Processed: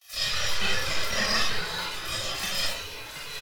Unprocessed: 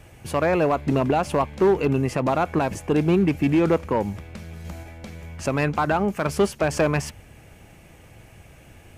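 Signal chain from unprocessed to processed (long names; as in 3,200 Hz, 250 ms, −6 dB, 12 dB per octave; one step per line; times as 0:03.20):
hearing-aid frequency compression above 1,300 Hz 1.5 to 1
gate on every frequency bin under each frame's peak −20 dB weak
comb and all-pass reverb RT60 1.1 s, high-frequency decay 0.5×, pre-delay 35 ms, DRR −3 dB
noise gate with hold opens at −49 dBFS
in parallel at +1.5 dB: downward compressor, threshold −47 dBFS, peak gain reduction 19.5 dB
on the sum: harmonic and percussive parts rebalanced harmonic +7 dB
comb filter 4.2 ms, depth 66%
change of speed 2.63×
delay with pitch and tempo change per echo 93 ms, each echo −4 semitones, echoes 3, each echo −6 dB
multiband upward and downward expander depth 40%
level −3.5 dB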